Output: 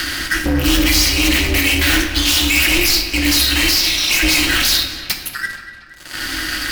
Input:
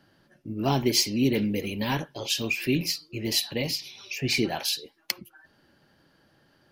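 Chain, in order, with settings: gate with hold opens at -50 dBFS; Chebyshev band-stop 120–1700 Hz, order 3; low shelf 120 Hz -11 dB; sample leveller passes 3; upward compressor, threshold -20 dBFS; fuzz box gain 48 dB, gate -57 dBFS; notch comb 230 Hz; ring modulator 180 Hz; darkening echo 0.236 s, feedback 59%, low-pass 4800 Hz, level -14 dB; shoebox room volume 870 m³, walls mixed, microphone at 0.96 m; gain +3 dB

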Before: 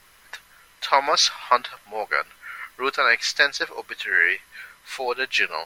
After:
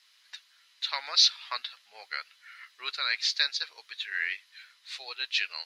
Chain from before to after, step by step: band-pass 4100 Hz, Q 2.2

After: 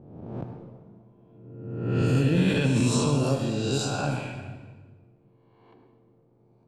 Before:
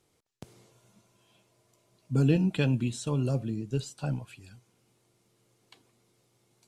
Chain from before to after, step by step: spectral swells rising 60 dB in 1.35 s; low-pass opened by the level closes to 550 Hz, open at -23.5 dBFS; 3.23–4.27 low shelf 330 Hz -9.5 dB; limiter -23 dBFS, peak gain reduction 11.5 dB; reverb RT60 1.4 s, pre-delay 63 ms, DRR 5 dB; gain +7 dB

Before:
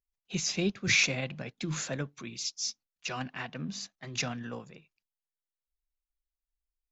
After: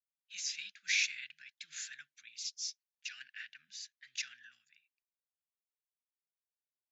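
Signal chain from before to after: elliptic high-pass 1600 Hz, stop band 40 dB; mismatched tape noise reduction decoder only; gain -5.5 dB

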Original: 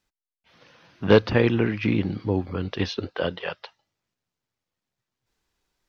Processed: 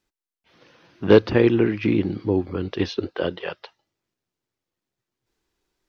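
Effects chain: bell 350 Hz +8 dB 0.67 oct; gain -1 dB

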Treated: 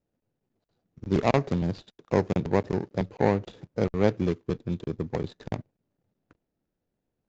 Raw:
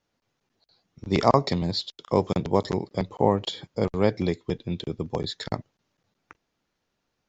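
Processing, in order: median filter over 41 samples; downsampling 16000 Hz

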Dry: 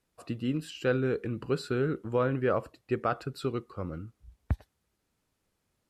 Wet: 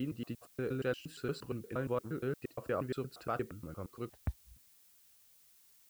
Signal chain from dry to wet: slices in reverse order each 0.117 s, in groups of 5; added noise blue -57 dBFS; gain -7.5 dB

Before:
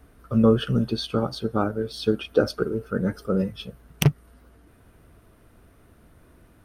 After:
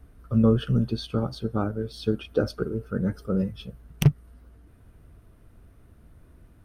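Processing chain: low shelf 180 Hz +11 dB; gain -6 dB

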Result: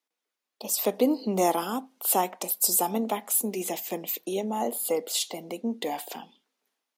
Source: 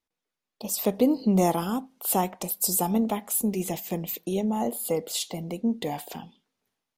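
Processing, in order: HPF 230 Hz 24 dB/oct; low shelf 350 Hz -5.5 dB; gain +2 dB

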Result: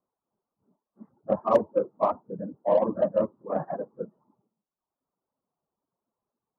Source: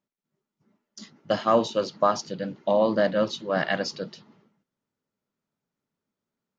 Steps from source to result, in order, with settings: phase scrambler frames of 50 ms; requantised 12-bit, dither triangular; steep low-pass 1100 Hz 36 dB/oct; low shelf 120 Hz -9.5 dB; added harmonics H 7 -36 dB, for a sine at -10 dBFS; reverb removal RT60 0.96 s

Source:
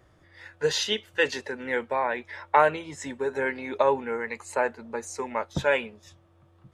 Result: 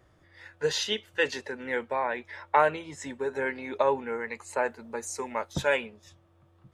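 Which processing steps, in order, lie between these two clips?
4.64–5.75 high shelf 8600 Hz -> 5200 Hz +10 dB; gain -2.5 dB

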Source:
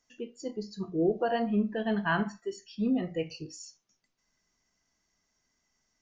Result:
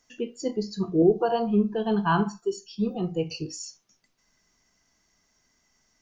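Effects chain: 1.02–3.31 fixed phaser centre 390 Hz, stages 8; gain +8 dB

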